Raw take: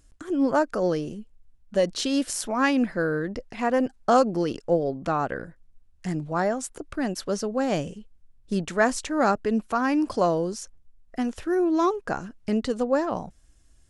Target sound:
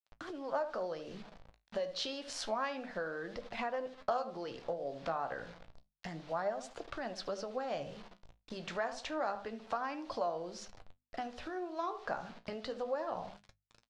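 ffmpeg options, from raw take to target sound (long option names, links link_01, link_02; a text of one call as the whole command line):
ffmpeg -i in.wav -filter_complex "[0:a]acrossover=split=440[link_01][link_02];[link_01]acompressor=threshold=-27dB:ratio=6[link_03];[link_03][link_02]amix=inputs=2:normalize=0,asplit=2[link_04][link_05];[link_05]adelay=74,lowpass=frequency=1600:poles=1,volume=-12dB,asplit=2[link_06][link_07];[link_07]adelay=74,lowpass=frequency=1600:poles=1,volume=0.26,asplit=2[link_08][link_09];[link_09]adelay=74,lowpass=frequency=1600:poles=1,volume=0.26[link_10];[link_06][link_08][link_10]amix=inputs=3:normalize=0[link_11];[link_04][link_11]amix=inputs=2:normalize=0,acrusher=bits=7:mix=0:aa=0.000001,lowpass=frequency=4300:width_type=q:width=1.7,tiltshelf=frequency=1200:gain=3.5,bandreject=frequency=50:width_type=h:width=6,bandreject=frequency=100:width_type=h:width=6,bandreject=frequency=150:width_type=h:width=6,bandreject=frequency=200:width_type=h:width=6,bandreject=frequency=250:width_type=h:width=6,acompressor=threshold=-30dB:ratio=6,flanger=delay=8.6:depth=9.6:regen=58:speed=0.29:shape=sinusoidal,lowshelf=frequency=470:width_type=q:width=1.5:gain=-8,volume=1.5dB" out.wav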